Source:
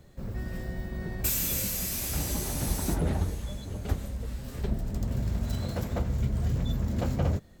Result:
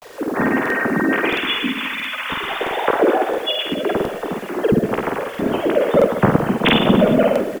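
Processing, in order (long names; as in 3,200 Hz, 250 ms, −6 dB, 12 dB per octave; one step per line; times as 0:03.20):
three sine waves on the formant tracks
gain on a spectral selection 0:01.28–0:02.50, 320–980 Hz −14 dB
dynamic equaliser 440 Hz, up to +4 dB, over −37 dBFS, Q 2.1
in parallel at −0.5 dB: downward compressor 16 to 1, threshold −33 dBFS, peak gain reduction 18.5 dB
on the sum: reverse bouncing-ball delay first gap 50 ms, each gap 1.25×, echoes 5
bit-depth reduction 8 bits, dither none
pitch-shifted copies added −3 semitones −4 dB
on a send at −15.5 dB: convolution reverb RT60 1.3 s, pre-delay 30 ms
on the sum: regular buffer underruns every 0.67 s, samples 2,048, repeat, from 0:00.61
level +4.5 dB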